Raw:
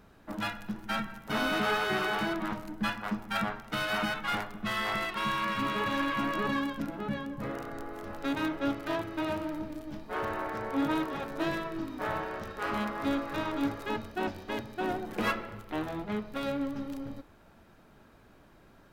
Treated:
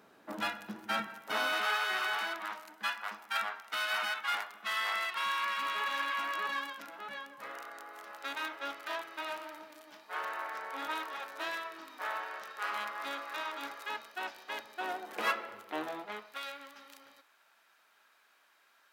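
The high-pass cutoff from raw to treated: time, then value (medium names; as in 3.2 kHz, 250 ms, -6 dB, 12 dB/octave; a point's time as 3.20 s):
0.99 s 300 Hz
1.69 s 990 Hz
14.32 s 990 Hz
15.85 s 420 Hz
16.45 s 1.4 kHz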